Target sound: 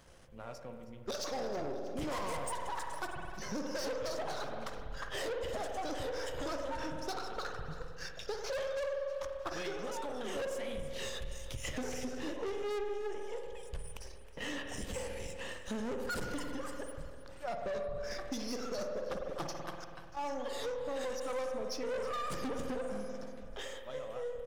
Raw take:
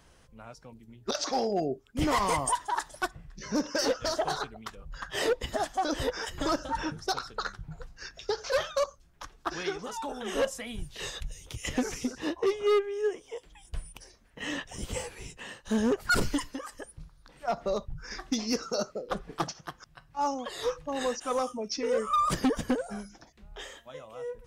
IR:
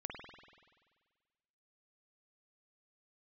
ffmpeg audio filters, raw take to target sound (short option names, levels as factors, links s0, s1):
-filter_complex "[0:a]aeval=exprs='if(lt(val(0),0),0.447*val(0),val(0))':c=same,asplit=2[s0][s1];[s1]equalizer=f=540:t=o:w=0.35:g=13[s2];[1:a]atrim=start_sample=2205[s3];[s2][s3]afir=irnorm=-1:irlink=0,volume=0.944[s4];[s0][s4]amix=inputs=2:normalize=0,asoftclip=type=tanh:threshold=0.0531,acompressor=threshold=0.0224:ratio=6,aecho=1:1:318|636|954|1272|1590:0.158|0.0824|0.0429|0.0223|0.0116,volume=0.75"